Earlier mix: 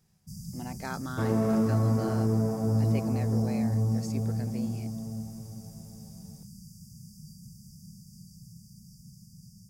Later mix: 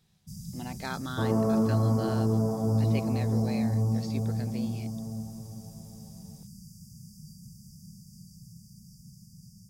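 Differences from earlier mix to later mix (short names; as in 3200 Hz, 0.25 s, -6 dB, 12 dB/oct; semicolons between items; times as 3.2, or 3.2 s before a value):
speech: add synth low-pass 3800 Hz, resonance Q 3.7; second sound: add resonant high shelf 1500 Hz -10 dB, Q 1.5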